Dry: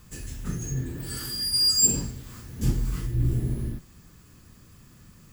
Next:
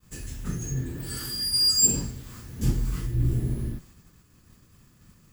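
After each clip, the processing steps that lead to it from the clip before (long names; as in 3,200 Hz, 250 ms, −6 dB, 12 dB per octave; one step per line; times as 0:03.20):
downward expander −46 dBFS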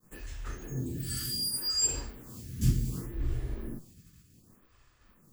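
phaser with staggered stages 0.67 Hz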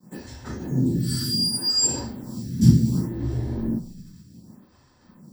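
convolution reverb RT60 0.20 s, pre-delay 3 ms, DRR 6.5 dB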